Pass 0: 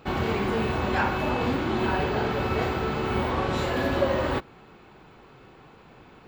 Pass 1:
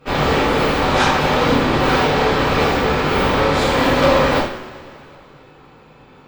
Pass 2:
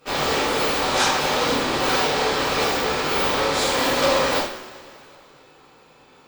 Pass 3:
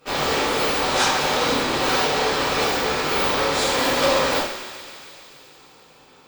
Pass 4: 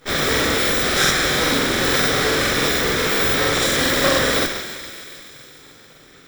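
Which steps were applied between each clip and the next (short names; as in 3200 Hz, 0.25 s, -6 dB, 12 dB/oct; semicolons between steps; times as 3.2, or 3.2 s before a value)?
added harmonics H 7 -27 dB, 8 -12 dB, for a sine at -11 dBFS; two-slope reverb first 0.57 s, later 2.6 s, from -18 dB, DRR -9 dB; gain -1.5 dB
tone controls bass -9 dB, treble +12 dB; gain -5 dB
thinning echo 0.143 s, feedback 80%, high-pass 860 Hz, level -13.5 dB
minimum comb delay 0.55 ms; in parallel at -10 dB: wrapped overs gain 19.5 dB; on the sum: crackling interface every 0.14 s, samples 2048, repeat, from 0.31; gain +3.5 dB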